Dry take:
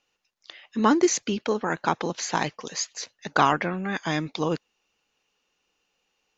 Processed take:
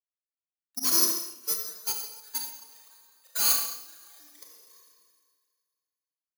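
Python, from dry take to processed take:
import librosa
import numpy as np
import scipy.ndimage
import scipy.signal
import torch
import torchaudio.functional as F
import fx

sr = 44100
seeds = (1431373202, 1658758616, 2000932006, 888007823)

y = fx.sine_speech(x, sr)
y = fx.highpass(y, sr, hz=330.0, slope=6)
y = fx.peak_eq(y, sr, hz=2000.0, db=-6.0, octaves=0.39)
y = fx.echo_stepped(y, sr, ms=280, hz=1000.0, octaves=0.7, feedback_pct=70, wet_db=-10.5)
y = (np.kron(y[::8], np.eye(8)[0]) * 8)[:len(y)]
y = fx.level_steps(y, sr, step_db=21)
y = np.sign(y) * np.maximum(np.abs(y) - 10.0 ** (-42.5 / 20.0), 0.0)
y = fx.peak_eq(y, sr, hz=600.0, db=-3.5, octaves=2.4)
y = 10.0 ** (-19.5 / 20.0) * np.tanh(y / 10.0 ** (-19.5 / 20.0))
y = fx.dereverb_blind(y, sr, rt60_s=0.95)
y = fx.rev_schroeder(y, sr, rt60_s=1.9, comb_ms=27, drr_db=-3.5)
y = fx.upward_expand(y, sr, threshold_db=-39.0, expansion=2.5)
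y = F.gain(torch.from_numpy(y), 7.0).numpy()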